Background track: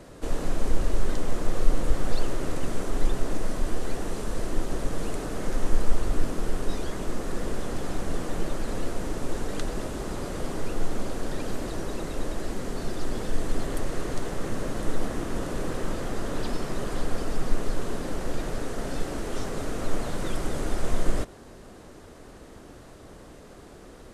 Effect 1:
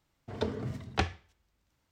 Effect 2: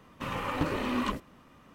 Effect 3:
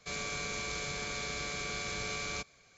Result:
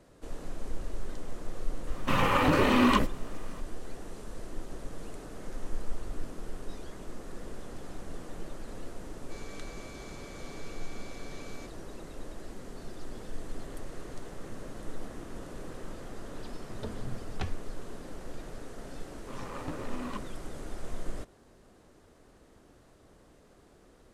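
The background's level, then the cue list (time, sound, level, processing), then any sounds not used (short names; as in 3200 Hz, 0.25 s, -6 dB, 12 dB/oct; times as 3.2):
background track -12 dB
1.87 add 2 -11.5 dB + maximiser +19.5 dB
9.24 add 3 -17.5 dB + comb 6.9 ms, depth 86%
16.42 add 1 -10.5 dB + tone controls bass +7 dB, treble +2 dB
19.07 add 2 -8.5 dB + Wiener smoothing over 15 samples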